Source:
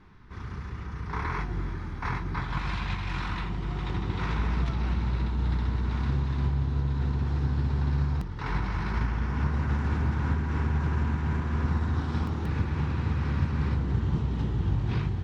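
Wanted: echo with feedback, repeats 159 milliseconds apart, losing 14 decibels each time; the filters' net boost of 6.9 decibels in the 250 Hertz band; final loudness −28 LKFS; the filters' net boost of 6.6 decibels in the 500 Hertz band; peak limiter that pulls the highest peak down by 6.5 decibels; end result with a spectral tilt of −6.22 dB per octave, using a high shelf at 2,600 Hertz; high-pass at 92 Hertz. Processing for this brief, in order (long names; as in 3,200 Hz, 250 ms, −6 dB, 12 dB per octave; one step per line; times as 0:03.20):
high-pass filter 92 Hz
parametric band 250 Hz +8.5 dB
parametric band 500 Hz +5 dB
high-shelf EQ 2,600 Hz +4.5 dB
brickwall limiter −19.5 dBFS
repeating echo 159 ms, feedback 20%, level −14 dB
level +1.5 dB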